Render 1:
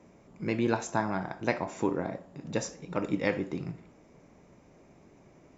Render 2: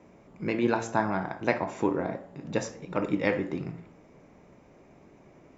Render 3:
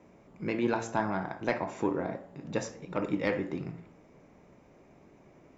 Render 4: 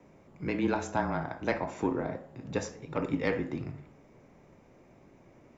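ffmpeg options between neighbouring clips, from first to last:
-af "bass=f=250:g=-2,treble=f=4000:g=-7,bandreject=f=56.81:t=h:w=4,bandreject=f=113.62:t=h:w=4,bandreject=f=170.43:t=h:w=4,bandreject=f=227.24:t=h:w=4,bandreject=f=284.05:t=h:w=4,bandreject=f=340.86:t=h:w=4,bandreject=f=397.67:t=h:w=4,bandreject=f=454.48:t=h:w=4,bandreject=f=511.29:t=h:w=4,bandreject=f=568.1:t=h:w=4,bandreject=f=624.91:t=h:w=4,bandreject=f=681.72:t=h:w=4,bandreject=f=738.53:t=h:w=4,bandreject=f=795.34:t=h:w=4,bandreject=f=852.15:t=h:w=4,bandreject=f=908.96:t=h:w=4,bandreject=f=965.77:t=h:w=4,bandreject=f=1022.58:t=h:w=4,bandreject=f=1079.39:t=h:w=4,bandreject=f=1136.2:t=h:w=4,bandreject=f=1193.01:t=h:w=4,bandreject=f=1249.82:t=h:w=4,bandreject=f=1306.63:t=h:w=4,bandreject=f=1363.44:t=h:w=4,bandreject=f=1420.25:t=h:w=4,bandreject=f=1477.06:t=h:w=4,bandreject=f=1533.87:t=h:w=4,bandreject=f=1590.68:t=h:w=4,bandreject=f=1647.49:t=h:w=4,bandreject=f=1704.3:t=h:w=4,bandreject=f=1761.11:t=h:w=4,bandreject=f=1817.92:t=h:w=4,bandreject=f=1874.73:t=h:w=4,bandreject=f=1931.54:t=h:w=4,bandreject=f=1988.35:t=h:w=4,bandreject=f=2045.16:t=h:w=4,bandreject=f=2101.97:t=h:w=4,bandreject=f=2158.78:t=h:w=4,volume=1.5"
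-af "asoftclip=type=tanh:threshold=0.251,volume=0.75"
-af "afreqshift=-25"

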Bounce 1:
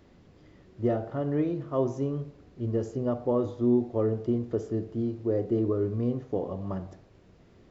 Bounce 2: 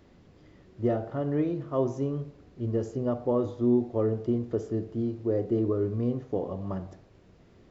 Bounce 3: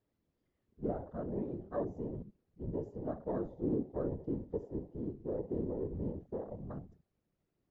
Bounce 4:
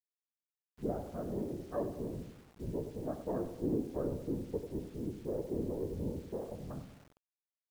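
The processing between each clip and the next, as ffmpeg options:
-af anull
-af "afwtdn=0.0178,afftfilt=real='hypot(re,im)*cos(2*PI*random(0))':imag='hypot(re,im)*sin(2*PI*random(1))':win_size=512:overlap=0.75,volume=0.631"
-filter_complex "[0:a]asplit=2[s0][s1];[s1]aecho=0:1:96|192|288|384|480|576:0.266|0.144|0.0776|0.0419|0.0226|0.0122[s2];[s0][s2]amix=inputs=2:normalize=0,acrusher=bits=9:mix=0:aa=0.000001"

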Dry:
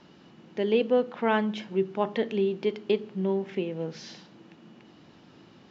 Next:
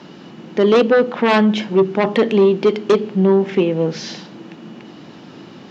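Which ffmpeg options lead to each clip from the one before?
-af "aeval=exprs='0.282*sin(PI/2*2.51*val(0)/0.282)':c=same,highpass=140,lowshelf=f=500:g=3,volume=1.26"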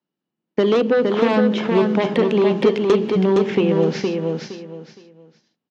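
-filter_complex "[0:a]agate=range=0.00398:threshold=0.0447:ratio=16:detection=peak,acrossover=split=600|2000[s0][s1][s2];[s0]acompressor=threshold=0.126:ratio=4[s3];[s1]acompressor=threshold=0.0355:ratio=4[s4];[s2]acompressor=threshold=0.0178:ratio=4[s5];[s3][s4][s5]amix=inputs=3:normalize=0,asplit=2[s6][s7];[s7]aecho=0:1:465|930|1395:0.631|0.158|0.0394[s8];[s6][s8]amix=inputs=2:normalize=0,volume=1.26"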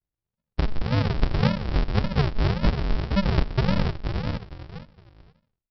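-af "lowpass=f=3900:w=0.5412,lowpass=f=3900:w=1.3066,aresample=11025,acrusher=samples=40:mix=1:aa=0.000001:lfo=1:lforange=24:lforate=1.8,aresample=44100,volume=0.562"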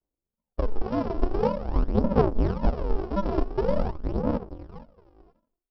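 -af "equalizer=f=125:t=o:w=1:g=-11,equalizer=f=250:t=o:w=1:g=9,equalizer=f=500:t=o:w=1:g=7,equalizer=f=1000:t=o:w=1:g=5,equalizer=f=2000:t=o:w=1:g=-9,equalizer=f=4000:t=o:w=1:g=-12,aphaser=in_gain=1:out_gain=1:delay=3:decay=0.56:speed=0.46:type=sinusoidal,volume=0.501"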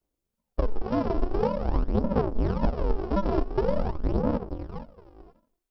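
-af "acompressor=threshold=0.0501:ratio=6,volume=1.88"

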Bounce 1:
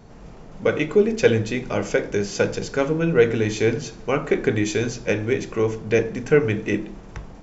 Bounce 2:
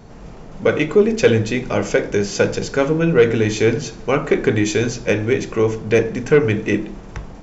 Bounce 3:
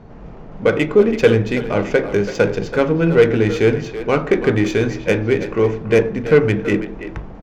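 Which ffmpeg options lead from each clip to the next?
-af "acontrast=46,volume=0.891"
-filter_complex "[0:a]adynamicsmooth=sensitivity=1:basefreq=2700,asplit=2[s0][s1];[s1]adelay=330,highpass=300,lowpass=3400,asoftclip=type=hard:threshold=0.266,volume=0.316[s2];[s0][s2]amix=inputs=2:normalize=0,volume=1.12"

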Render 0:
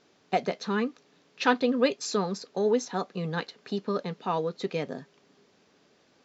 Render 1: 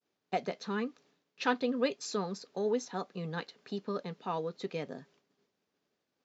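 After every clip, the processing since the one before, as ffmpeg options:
-af "agate=range=0.0224:threshold=0.002:ratio=3:detection=peak,volume=0.473"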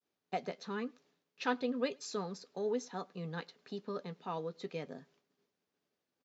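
-filter_complex "[0:a]asplit=2[s0][s1];[s1]adelay=12,volume=0.211[s2];[s0][s2]amix=inputs=2:normalize=0,asplit=2[s3][s4];[s4]adelay=105,volume=0.0355,highshelf=f=4000:g=-2.36[s5];[s3][s5]amix=inputs=2:normalize=0,volume=0.596"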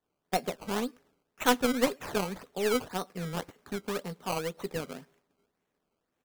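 -af "acrusher=samples=17:mix=1:aa=0.000001:lfo=1:lforange=17:lforate=1.9,aeval=exprs='0.119*(cos(1*acos(clip(val(0)/0.119,-1,1)))-cos(1*PI/2))+0.0299*(cos(2*acos(clip(val(0)/0.119,-1,1)))-cos(2*PI/2))+0.00531*(cos(5*acos(clip(val(0)/0.119,-1,1)))-cos(5*PI/2))+0.0075*(cos(7*acos(clip(val(0)/0.119,-1,1)))-cos(7*PI/2))':c=same,volume=2.37"

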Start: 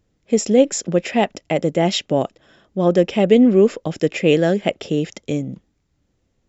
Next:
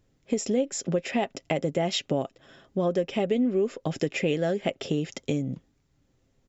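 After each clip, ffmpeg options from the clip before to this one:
-af "aecho=1:1:7.5:0.32,acompressor=threshold=0.0708:ratio=4,volume=0.891"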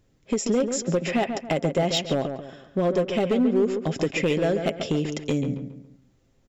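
-filter_complex "[0:a]asoftclip=type=hard:threshold=0.106,asplit=2[s0][s1];[s1]adelay=139,lowpass=f=2300:p=1,volume=0.447,asplit=2[s2][s3];[s3]adelay=139,lowpass=f=2300:p=1,volume=0.38,asplit=2[s4][s5];[s5]adelay=139,lowpass=f=2300:p=1,volume=0.38,asplit=2[s6][s7];[s7]adelay=139,lowpass=f=2300:p=1,volume=0.38[s8];[s2][s4][s6][s8]amix=inputs=4:normalize=0[s9];[s0][s9]amix=inputs=2:normalize=0,volume=1.41"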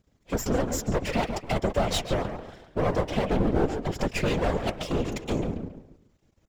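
-af "aeval=exprs='max(val(0),0)':c=same,afftfilt=real='hypot(re,im)*cos(2*PI*random(0))':imag='hypot(re,im)*sin(2*PI*random(1))':win_size=512:overlap=0.75,volume=2.24"

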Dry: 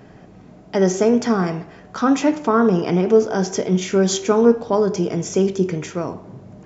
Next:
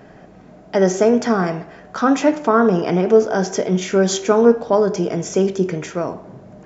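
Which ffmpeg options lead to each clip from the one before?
-af "equalizer=f=100:t=o:w=0.67:g=-5,equalizer=f=630:t=o:w=0.67:g=5,equalizer=f=1600:t=o:w=0.67:g=4"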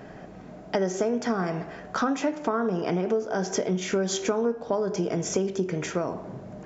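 -af "acompressor=threshold=0.0708:ratio=6"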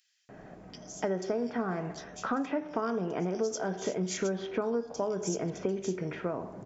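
-filter_complex "[0:a]acrossover=split=3300[s0][s1];[s0]adelay=290[s2];[s2][s1]amix=inputs=2:normalize=0,volume=0.531"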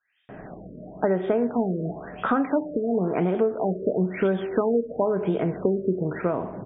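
-af "afftfilt=real='re*lt(b*sr/1024,630*pow(3800/630,0.5+0.5*sin(2*PI*0.98*pts/sr)))':imag='im*lt(b*sr/1024,630*pow(3800/630,0.5+0.5*sin(2*PI*0.98*pts/sr)))':win_size=1024:overlap=0.75,volume=2.66"

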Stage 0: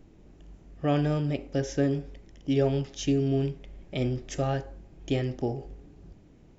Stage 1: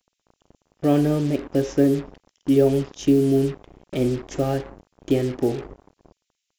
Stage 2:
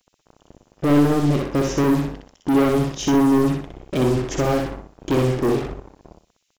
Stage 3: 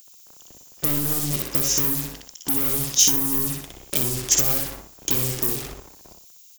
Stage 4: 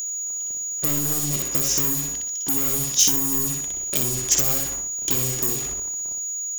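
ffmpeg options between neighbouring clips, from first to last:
-filter_complex "[0:a]equalizer=f=340:t=o:w=1.6:g=10,acrossover=split=3000[s0][s1];[s0]acrusher=bits=5:mix=0:aa=0.5[s2];[s2][s1]amix=inputs=2:normalize=0"
-filter_complex "[0:a]asoftclip=type=tanh:threshold=0.075,asplit=2[s0][s1];[s1]aecho=0:1:62|124|186|248:0.668|0.194|0.0562|0.0163[s2];[s0][s2]amix=inputs=2:normalize=0,volume=2.24"
-filter_complex "[0:a]acrossover=split=180[s0][s1];[s1]acompressor=threshold=0.0501:ratio=6[s2];[s0][s2]amix=inputs=2:normalize=0,crystalizer=i=8.5:c=0,aemphasis=mode=production:type=50fm,volume=0.473"
-af "aeval=exprs='val(0)+0.0562*sin(2*PI*6800*n/s)':c=same,volume=0.891"

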